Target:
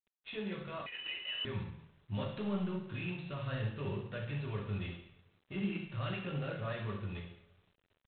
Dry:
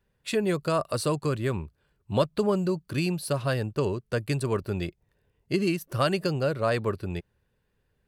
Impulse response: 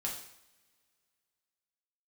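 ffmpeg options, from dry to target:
-filter_complex "[0:a]asettb=1/sr,asplit=3[link_01][link_02][link_03];[link_01]atrim=end=4.264[link_04];[link_02]atrim=start=4.26:end=5.54,asetpts=PTS-STARTPTS,afade=type=in:duration=0.004:curve=qsin,afade=type=out:start_time=1.276:duration=0.004:curve=qsin,agate=range=-33dB:threshold=-57dB:ratio=3:detection=peak[link_05];[link_03]atrim=start=5.536[link_06];[link_04][link_05]acrossfade=duration=0.004:curve1=hsin:curve2=qsin[link_07];[link_07][link_06]acrossfade=duration=0.004:curve1=qsin:curve2=hsin,equalizer=frequency=460:width=0.31:gain=-10.5,asplit=2[link_08][link_09];[link_09]acompressor=threshold=-40dB:ratio=12,volume=-2.5dB[link_10];[link_08][link_10]amix=inputs=2:normalize=0,alimiter=level_in=1dB:limit=-24dB:level=0:latency=1:release=18,volume=-1dB,dynaudnorm=framelen=200:gausssize=13:maxgain=3dB,asplit=3[link_11][link_12][link_13];[link_11]afade=type=out:start_time=2.22:duration=0.02[link_14];[link_12]aeval=exprs='0.0794*(cos(1*acos(clip(val(0)/0.0794,-1,1)))-cos(1*PI/2))+0.00251*(cos(8*acos(clip(val(0)/0.0794,-1,1)))-cos(8*PI/2))':channel_layout=same,afade=type=in:start_time=2.22:duration=0.02,afade=type=out:start_time=2.68:duration=0.02[link_15];[link_13]afade=type=in:start_time=2.68:duration=0.02[link_16];[link_14][link_15][link_16]amix=inputs=3:normalize=0,flanger=delay=4.8:depth=3.3:regen=75:speed=0.74:shape=sinusoidal,aeval=exprs='0.0447*(abs(mod(val(0)/0.0447+3,4)-2)-1)':channel_layout=same,aecho=1:1:69|138|207|276|345:0.251|0.131|0.0679|0.0353|0.0184[link_17];[1:a]atrim=start_sample=2205[link_18];[link_17][link_18]afir=irnorm=-1:irlink=0,asettb=1/sr,asplit=3[link_19][link_20][link_21];[link_19]atrim=end=0.864[link_22];[link_20]atrim=start=0.86:end=1.45,asetpts=PTS-STARTPTS,afade=type=in:duration=0.004:curve=qsin,afade=type=out:start_time=0.586:duration=0.004:curve=qsin,lowpass=frequency=2600:width_type=q:width=0.5098,lowpass=frequency=2600:width_type=q:width=0.6013,lowpass=frequency=2600:width_type=q:width=0.9,lowpass=frequency=2600:width_type=q:width=2.563,afreqshift=-3100[link_23];[link_21]atrim=start=1.446[link_24];[link_22][link_23]acrossfade=duration=0.004:curve1=hsin:curve2=qsin[link_25];[link_25][link_24]acrossfade=duration=0.004:curve1=qsin:curve2=hsin,volume=-4.5dB" -ar 8000 -c:a adpcm_g726 -b:a 24k

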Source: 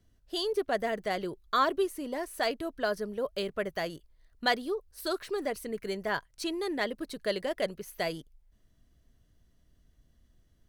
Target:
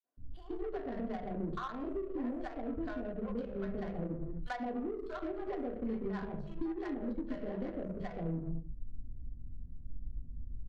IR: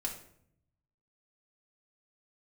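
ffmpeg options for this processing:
-filter_complex "[0:a]asettb=1/sr,asplit=3[link_01][link_02][link_03];[link_01]atrim=end=3.854[link_04];[link_02]atrim=start=3.85:end=5.92,asetpts=PTS-STARTPTS,afade=type=in:duration=0.004:curve=qsin,afade=type=out:start_time=2.066:duration=0.004:curve=qsin,equalizer=frequency=910:width=0.37:gain=7[link_05];[link_03]atrim=start=5.916[link_06];[link_04][link_05]acrossfade=duration=0.004:curve1=hsin:curve2=qsin[link_07];[link_07][link_06]acrossfade=duration=0.004:curve1=qsin:curve2=hsin,acrossover=split=650|3200[link_08][link_09][link_10];[link_09]adelay=40[link_11];[link_08]adelay=170[link_12];[link_12][link_11][link_10]amix=inputs=3:normalize=0[link_13];[1:a]atrim=start_sample=2205,afade=type=out:start_time=0.4:duration=0.01,atrim=end_sample=18081[link_14];[link_13][link_14]afir=irnorm=-1:irlink=0,acompressor=threshold=-44dB:ratio=4,bass=frequency=250:gain=13,treble=frequency=4000:gain=-7,adynamicsmooth=sensitivity=7:basefreq=540,volume=3.5dB"

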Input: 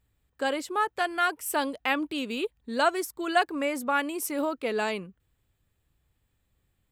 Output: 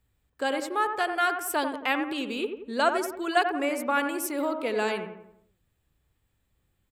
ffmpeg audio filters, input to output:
ffmpeg -i in.wav -filter_complex "[0:a]asettb=1/sr,asplit=3[link_01][link_02][link_03];[link_01]atrim=end=2.124[link_04];[link_02]atrim=start=2.12:end=3.12,asetpts=PTS-STARTPTS,afade=type=in:duration=0.004:curve=qsin,afade=type=out:start_time=0.996:duration=0.004:curve=qsin,highshelf=frequency=12000:gain=-6.5[link_05];[link_03]atrim=start=3.116[link_06];[link_04][link_05]acrossfade=duration=0.004:curve1=hsin:curve2=qsin[link_07];[link_07][link_06]acrossfade=duration=0.004:curve1=qsin:curve2=hsin,acrossover=split=160|3400[link_08][link_09][link_10];[link_08]alimiter=level_in=30.5dB:limit=-24dB:level=0:latency=1:release=384,volume=-30.5dB[link_11];[link_09]asplit=2[link_12][link_13];[link_13]adelay=89,lowpass=frequency=2300:poles=1,volume=-6dB,asplit=2[link_14][link_15];[link_15]adelay=89,lowpass=frequency=2300:poles=1,volume=0.48,asplit=2[link_16][link_17];[link_17]adelay=89,lowpass=frequency=2300:poles=1,volume=0.48,asplit=2[link_18][link_19];[link_19]adelay=89,lowpass=frequency=2300:poles=1,volume=0.48,asplit=2[link_20][link_21];[link_21]adelay=89,lowpass=frequency=2300:poles=1,volume=0.48,asplit=2[link_22][link_23];[link_23]adelay=89,lowpass=frequency=2300:poles=1,volume=0.48[link_24];[link_12][link_14][link_16][link_18][link_20][link_22][link_24]amix=inputs=7:normalize=0[link_25];[link_11][link_25][link_10]amix=inputs=3:normalize=0" out.wav

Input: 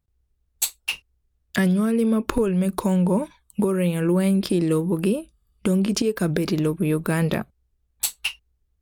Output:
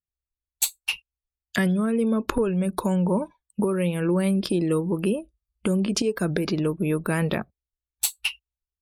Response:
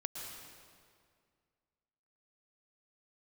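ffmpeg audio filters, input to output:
-af "afftdn=noise_reduction=21:noise_floor=-42,lowshelf=frequency=410:gain=-3.5"

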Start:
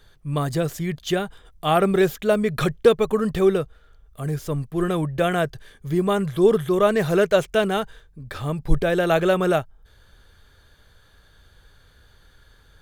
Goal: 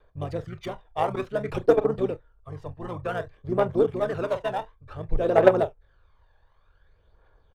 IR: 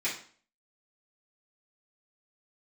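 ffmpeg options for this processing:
-filter_complex "[0:a]adynamicsmooth=sensitivity=5:basefreq=3500,asplit=2[link_01][link_02];[link_02]aecho=0:1:61|122:0.237|0.0427[link_03];[link_01][link_03]amix=inputs=2:normalize=0,apsyclip=10dB,bandreject=frequency=7100:width=14,atempo=1.7,tiltshelf=frequency=730:gain=6.5,asplit=2[link_04][link_05];[link_05]asetrate=29433,aresample=44100,atempo=1.49831,volume=-3dB[link_06];[link_04][link_06]amix=inputs=2:normalize=0,lowshelf=frequency=380:width_type=q:width=1.5:gain=-13,aphaser=in_gain=1:out_gain=1:delay=1.2:decay=0.52:speed=0.55:type=triangular,aeval=exprs='2.99*(cos(1*acos(clip(val(0)/2.99,-1,1)))-cos(1*PI/2))+0.473*(cos(3*acos(clip(val(0)/2.99,-1,1)))-cos(3*PI/2))':channel_layout=same,volume=-12dB"

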